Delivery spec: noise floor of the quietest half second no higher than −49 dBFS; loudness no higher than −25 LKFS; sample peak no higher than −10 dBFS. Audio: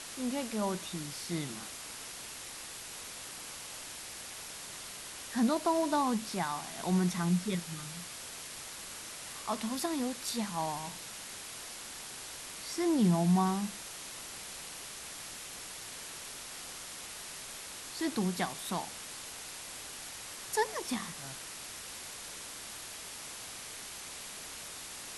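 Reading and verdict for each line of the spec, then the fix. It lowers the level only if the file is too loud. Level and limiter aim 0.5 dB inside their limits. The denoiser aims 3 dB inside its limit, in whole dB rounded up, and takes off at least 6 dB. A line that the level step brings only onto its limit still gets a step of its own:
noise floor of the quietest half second −45 dBFS: out of spec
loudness −36.5 LKFS: in spec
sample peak −18.0 dBFS: in spec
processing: broadband denoise 7 dB, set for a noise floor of −45 dBFS

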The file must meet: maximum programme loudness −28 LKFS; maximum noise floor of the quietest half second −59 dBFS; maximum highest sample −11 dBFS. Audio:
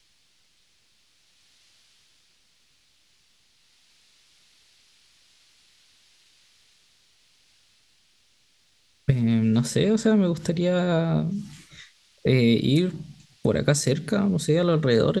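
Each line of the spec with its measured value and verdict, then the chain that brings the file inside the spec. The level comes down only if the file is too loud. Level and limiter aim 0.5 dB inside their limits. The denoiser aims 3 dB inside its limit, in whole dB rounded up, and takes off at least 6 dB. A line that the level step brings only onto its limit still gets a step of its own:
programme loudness −23.0 LKFS: out of spec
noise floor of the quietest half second −63 dBFS: in spec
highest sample −5.5 dBFS: out of spec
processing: level −5.5 dB
brickwall limiter −11.5 dBFS

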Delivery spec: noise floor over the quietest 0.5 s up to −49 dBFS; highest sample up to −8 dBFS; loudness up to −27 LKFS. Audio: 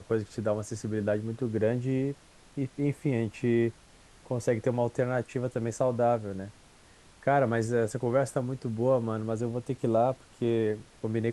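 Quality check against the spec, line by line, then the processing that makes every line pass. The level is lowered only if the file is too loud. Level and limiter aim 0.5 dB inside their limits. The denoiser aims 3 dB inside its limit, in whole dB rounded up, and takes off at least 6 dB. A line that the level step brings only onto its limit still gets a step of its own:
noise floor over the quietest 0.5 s −56 dBFS: in spec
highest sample −12.5 dBFS: in spec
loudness −29.5 LKFS: in spec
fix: no processing needed

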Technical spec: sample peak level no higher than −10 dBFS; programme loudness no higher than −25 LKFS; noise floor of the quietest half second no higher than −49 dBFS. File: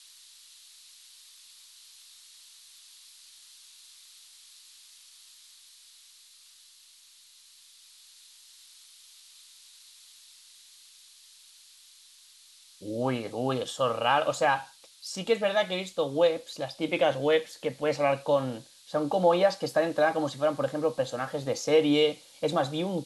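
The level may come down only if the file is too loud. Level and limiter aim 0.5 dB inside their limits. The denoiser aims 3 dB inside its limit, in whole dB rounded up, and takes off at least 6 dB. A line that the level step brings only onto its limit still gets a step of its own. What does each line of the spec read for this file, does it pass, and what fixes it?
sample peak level −10.5 dBFS: in spec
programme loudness −27.5 LKFS: in spec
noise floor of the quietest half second −56 dBFS: in spec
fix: no processing needed

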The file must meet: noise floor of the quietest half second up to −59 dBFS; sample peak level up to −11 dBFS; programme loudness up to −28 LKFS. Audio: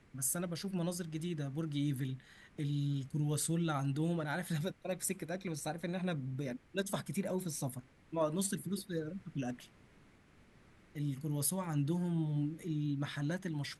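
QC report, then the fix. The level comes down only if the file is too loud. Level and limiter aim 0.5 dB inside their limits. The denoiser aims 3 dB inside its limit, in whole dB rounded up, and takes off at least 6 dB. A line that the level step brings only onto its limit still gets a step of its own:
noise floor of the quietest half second −63 dBFS: in spec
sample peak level −20.5 dBFS: in spec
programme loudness −37.5 LKFS: in spec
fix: no processing needed

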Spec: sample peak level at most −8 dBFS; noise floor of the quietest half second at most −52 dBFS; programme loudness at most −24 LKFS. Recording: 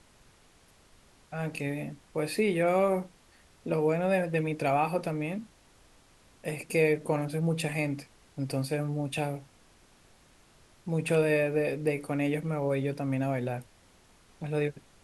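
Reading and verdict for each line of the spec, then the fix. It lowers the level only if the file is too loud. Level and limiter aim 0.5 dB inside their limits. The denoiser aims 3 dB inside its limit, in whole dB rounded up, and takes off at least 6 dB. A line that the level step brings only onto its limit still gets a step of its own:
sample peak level −12.5 dBFS: in spec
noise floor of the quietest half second −60 dBFS: in spec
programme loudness −30.0 LKFS: in spec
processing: no processing needed

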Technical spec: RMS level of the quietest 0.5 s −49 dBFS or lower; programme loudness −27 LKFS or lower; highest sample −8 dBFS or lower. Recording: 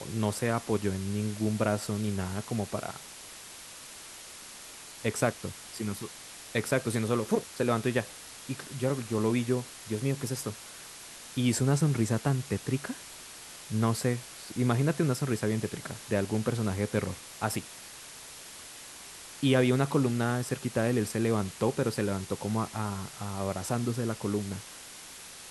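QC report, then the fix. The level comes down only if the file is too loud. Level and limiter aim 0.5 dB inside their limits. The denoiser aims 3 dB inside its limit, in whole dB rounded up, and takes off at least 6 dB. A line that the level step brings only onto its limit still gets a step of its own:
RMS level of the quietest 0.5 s −47 dBFS: out of spec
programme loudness −30.5 LKFS: in spec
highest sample −11.5 dBFS: in spec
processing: broadband denoise 6 dB, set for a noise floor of −47 dBFS

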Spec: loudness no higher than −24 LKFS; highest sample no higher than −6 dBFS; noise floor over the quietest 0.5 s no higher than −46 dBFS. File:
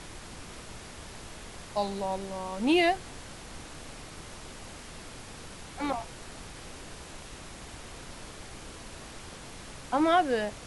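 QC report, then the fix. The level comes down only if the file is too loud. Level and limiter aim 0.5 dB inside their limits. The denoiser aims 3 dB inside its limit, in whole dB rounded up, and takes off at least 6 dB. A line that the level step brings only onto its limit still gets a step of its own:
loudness −28.5 LKFS: in spec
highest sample −13.0 dBFS: in spec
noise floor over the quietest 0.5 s −44 dBFS: out of spec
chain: broadband denoise 6 dB, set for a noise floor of −44 dBFS

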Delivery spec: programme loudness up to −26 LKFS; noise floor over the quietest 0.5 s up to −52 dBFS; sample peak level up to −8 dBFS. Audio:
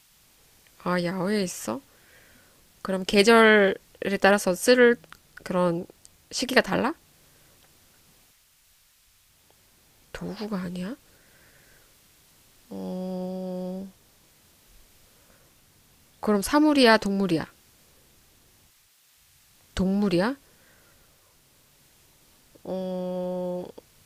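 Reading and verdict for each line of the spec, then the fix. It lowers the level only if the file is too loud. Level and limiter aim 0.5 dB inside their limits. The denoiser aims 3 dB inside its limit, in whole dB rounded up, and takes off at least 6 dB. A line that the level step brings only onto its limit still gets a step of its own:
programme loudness −24.0 LKFS: out of spec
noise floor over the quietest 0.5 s −61 dBFS: in spec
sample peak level −4.5 dBFS: out of spec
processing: level −2.5 dB
brickwall limiter −8.5 dBFS

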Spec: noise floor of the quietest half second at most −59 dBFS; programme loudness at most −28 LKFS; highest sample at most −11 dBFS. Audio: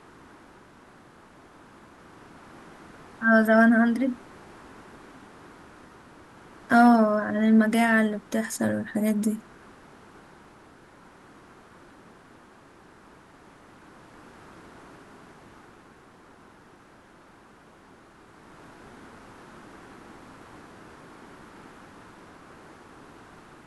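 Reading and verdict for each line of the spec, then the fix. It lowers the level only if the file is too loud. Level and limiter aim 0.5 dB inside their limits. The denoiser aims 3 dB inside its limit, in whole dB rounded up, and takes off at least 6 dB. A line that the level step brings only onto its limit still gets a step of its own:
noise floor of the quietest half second −53 dBFS: out of spec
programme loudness −22.0 LKFS: out of spec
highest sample −7.5 dBFS: out of spec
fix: level −6.5 dB

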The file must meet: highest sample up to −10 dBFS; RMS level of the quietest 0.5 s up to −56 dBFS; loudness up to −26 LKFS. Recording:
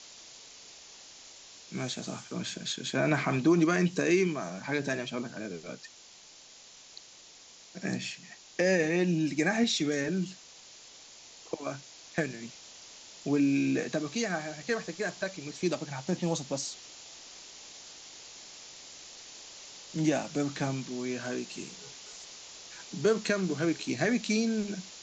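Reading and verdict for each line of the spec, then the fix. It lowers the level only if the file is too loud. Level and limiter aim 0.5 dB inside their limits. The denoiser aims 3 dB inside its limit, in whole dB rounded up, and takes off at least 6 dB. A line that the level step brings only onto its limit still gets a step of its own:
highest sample −14.0 dBFS: in spec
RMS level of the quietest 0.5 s −54 dBFS: out of spec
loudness −31.0 LKFS: in spec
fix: broadband denoise 6 dB, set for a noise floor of −54 dBFS

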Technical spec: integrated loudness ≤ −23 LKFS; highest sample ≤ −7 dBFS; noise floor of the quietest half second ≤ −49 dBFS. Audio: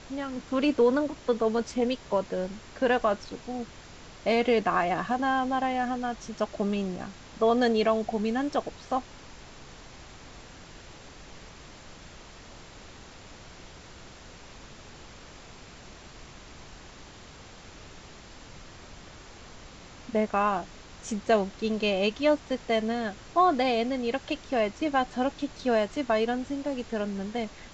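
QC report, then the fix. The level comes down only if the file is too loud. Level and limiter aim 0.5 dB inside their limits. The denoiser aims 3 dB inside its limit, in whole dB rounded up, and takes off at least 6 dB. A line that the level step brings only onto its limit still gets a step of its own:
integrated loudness −28.0 LKFS: in spec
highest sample −11.5 dBFS: in spec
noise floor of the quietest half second −48 dBFS: out of spec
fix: broadband denoise 6 dB, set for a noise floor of −48 dBFS

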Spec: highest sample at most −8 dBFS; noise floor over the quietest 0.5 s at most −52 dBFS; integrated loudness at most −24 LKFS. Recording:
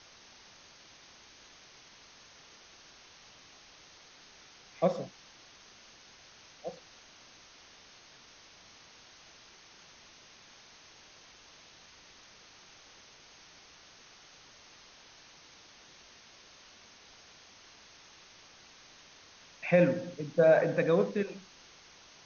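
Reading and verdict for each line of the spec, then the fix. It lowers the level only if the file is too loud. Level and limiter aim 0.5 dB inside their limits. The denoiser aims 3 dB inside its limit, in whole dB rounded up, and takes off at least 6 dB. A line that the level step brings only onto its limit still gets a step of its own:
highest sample −12.0 dBFS: in spec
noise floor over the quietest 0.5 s −56 dBFS: in spec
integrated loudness −29.0 LKFS: in spec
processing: no processing needed

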